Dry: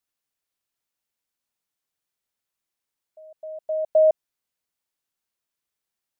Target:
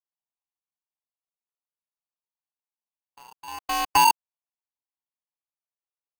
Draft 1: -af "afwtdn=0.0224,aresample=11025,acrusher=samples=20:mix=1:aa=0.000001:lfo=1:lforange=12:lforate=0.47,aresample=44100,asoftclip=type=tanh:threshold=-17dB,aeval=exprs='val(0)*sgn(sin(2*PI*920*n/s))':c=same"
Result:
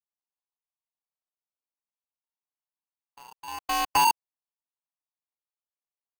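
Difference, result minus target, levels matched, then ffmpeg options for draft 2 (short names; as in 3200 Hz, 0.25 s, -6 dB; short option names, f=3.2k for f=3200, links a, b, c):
soft clip: distortion +14 dB
-af "afwtdn=0.0224,aresample=11025,acrusher=samples=20:mix=1:aa=0.000001:lfo=1:lforange=12:lforate=0.47,aresample=44100,asoftclip=type=tanh:threshold=-8.5dB,aeval=exprs='val(0)*sgn(sin(2*PI*920*n/s))':c=same"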